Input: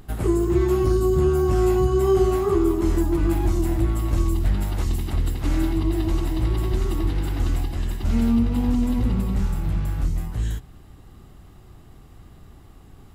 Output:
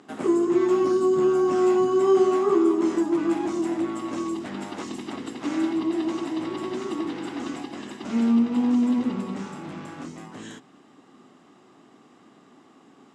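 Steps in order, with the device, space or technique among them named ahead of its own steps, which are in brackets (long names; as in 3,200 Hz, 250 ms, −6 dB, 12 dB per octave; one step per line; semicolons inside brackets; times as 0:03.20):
television speaker (loudspeaker in its box 220–7,600 Hz, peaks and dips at 260 Hz +5 dB, 1,100 Hz +3 dB, 4,300 Hz −4 dB)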